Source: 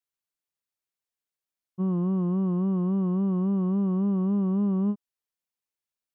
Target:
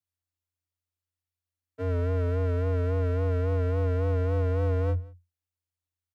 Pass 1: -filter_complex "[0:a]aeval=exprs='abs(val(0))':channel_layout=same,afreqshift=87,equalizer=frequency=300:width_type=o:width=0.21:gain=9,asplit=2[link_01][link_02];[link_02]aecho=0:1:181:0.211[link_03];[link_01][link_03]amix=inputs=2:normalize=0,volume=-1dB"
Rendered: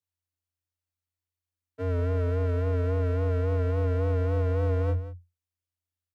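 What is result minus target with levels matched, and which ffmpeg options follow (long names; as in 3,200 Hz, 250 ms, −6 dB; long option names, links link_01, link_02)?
echo-to-direct +9.5 dB
-filter_complex "[0:a]aeval=exprs='abs(val(0))':channel_layout=same,afreqshift=87,equalizer=frequency=300:width_type=o:width=0.21:gain=9,asplit=2[link_01][link_02];[link_02]aecho=0:1:181:0.0708[link_03];[link_01][link_03]amix=inputs=2:normalize=0,volume=-1dB"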